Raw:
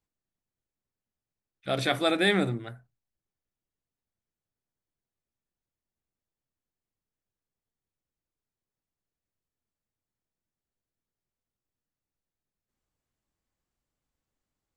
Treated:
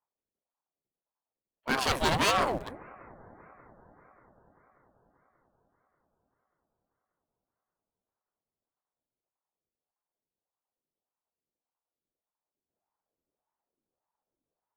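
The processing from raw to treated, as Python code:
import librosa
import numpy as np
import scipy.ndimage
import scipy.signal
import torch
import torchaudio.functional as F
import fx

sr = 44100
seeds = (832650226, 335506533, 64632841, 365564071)

p1 = np.minimum(x, 2.0 * 10.0 ** (-24.0 / 20.0) - x)
p2 = fx.env_lowpass(p1, sr, base_hz=790.0, full_db=-31.5)
p3 = np.where(np.abs(p2) >= 10.0 ** (-35.0 / 20.0), p2, 0.0)
p4 = p2 + (p3 * 10.0 ** (-6.0 / 20.0))
p5 = fx.cheby_harmonics(p4, sr, harmonics=(8,), levels_db=(-20,), full_scale_db=-11.0)
p6 = p5 + fx.echo_bbd(p5, sr, ms=195, stages=2048, feedback_pct=82, wet_db=-23, dry=0)
y = fx.ring_lfo(p6, sr, carrier_hz=610.0, swing_pct=55, hz=1.7)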